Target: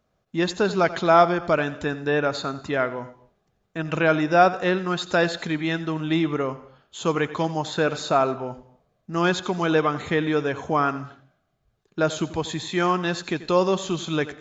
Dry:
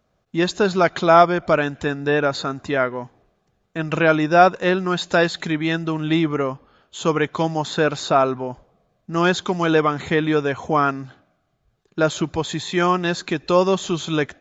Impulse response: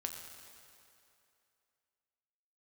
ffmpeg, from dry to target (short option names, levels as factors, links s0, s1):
-filter_complex "[0:a]asplit=2[s0][s1];[1:a]atrim=start_sample=2205,afade=t=out:st=0.24:d=0.01,atrim=end_sample=11025,adelay=88[s2];[s1][s2]afir=irnorm=-1:irlink=0,volume=0.224[s3];[s0][s3]amix=inputs=2:normalize=0,volume=0.668"